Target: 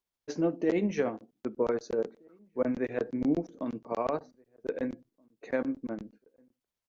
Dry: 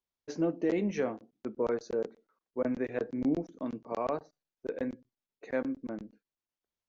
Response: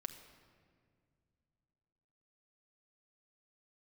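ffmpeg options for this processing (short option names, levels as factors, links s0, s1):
-filter_complex "[0:a]tremolo=f=13:d=0.37,asplit=2[s0][s1];[s1]adelay=1574,volume=0.0316,highshelf=f=4000:g=-35.4[s2];[s0][s2]amix=inputs=2:normalize=0,volume=1.5"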